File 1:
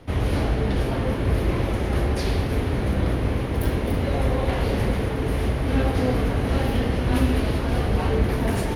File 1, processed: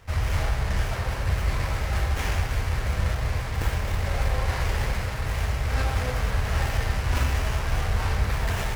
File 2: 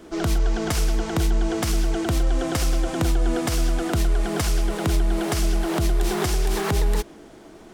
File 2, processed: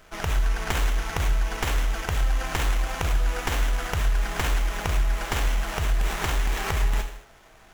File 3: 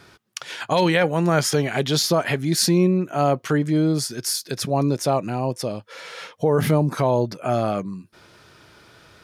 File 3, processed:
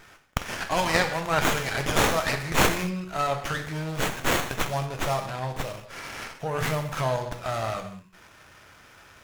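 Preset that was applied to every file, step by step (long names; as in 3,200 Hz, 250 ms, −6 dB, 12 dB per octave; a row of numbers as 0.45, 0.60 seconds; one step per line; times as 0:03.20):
guitar amp tone stack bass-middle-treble 10-0-10
reverb whose tail is shaped and stops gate 250 ms falling, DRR 4.5 dB
windowed peak hold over 9 samples
loudness normalisation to −27 LKFS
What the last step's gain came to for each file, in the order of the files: +7.5, +5.5, +6.0 decibels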